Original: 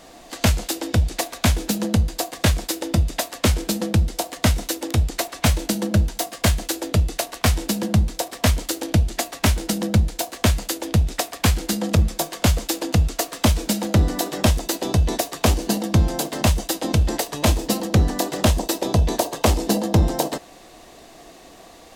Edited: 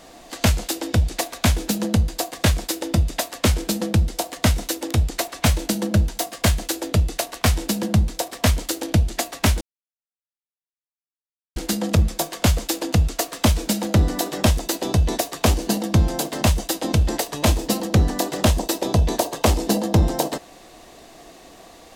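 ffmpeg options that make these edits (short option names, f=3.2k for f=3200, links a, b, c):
-filter_complex "[0:a]asplit=3[a][b][c];[a]atrim=end=9.61,asetpts=PTS-STARTPTS,afade=t=out:st=9.606:d=0.004:c=hsin[d];[b]atrim=start=9.61:end=11.56,asetpts=PTS-STARTPTS,volume=0[e];[c]atrim=start=11.56,asetpts=PTS-STARTPTS,afade=t=in:d=0.004:c=hsin[f];[d][e][f]concat=n=3:v=0:a=1"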